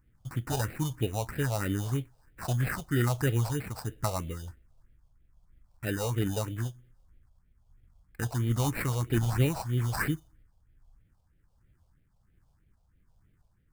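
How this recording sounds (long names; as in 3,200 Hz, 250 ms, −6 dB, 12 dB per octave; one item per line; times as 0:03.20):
aliases and images of a low sample rate 3,300 Hz, jitter 0%
phaser sweep stages 4, 3.1 Hz, lowest notch 300–1,000 Hz
tremolo triangle 1.3 Hz, depth 40%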